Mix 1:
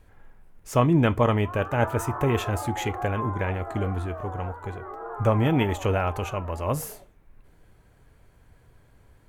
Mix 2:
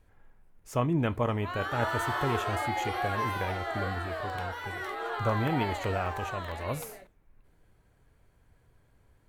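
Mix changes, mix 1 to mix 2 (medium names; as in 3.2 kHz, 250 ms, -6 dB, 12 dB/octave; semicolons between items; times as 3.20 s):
speech -7.5 dB; background: remove Chebyshev band-pass 100–1200 Hz, order 3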